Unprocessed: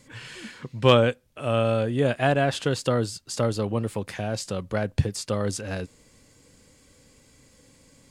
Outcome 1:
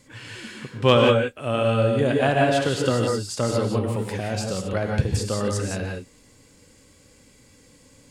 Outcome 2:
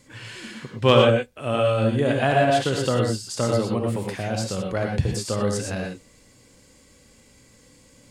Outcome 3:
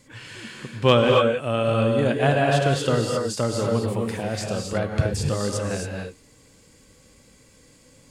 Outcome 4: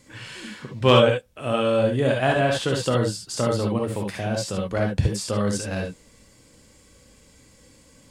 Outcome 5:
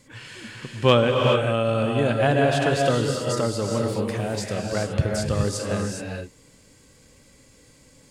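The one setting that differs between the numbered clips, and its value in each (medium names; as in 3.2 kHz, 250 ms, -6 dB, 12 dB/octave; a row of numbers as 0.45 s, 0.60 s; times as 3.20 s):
gated-style reverb, gate: 200 ms, 140 ms, 300 ms, 90 ms, 450 ms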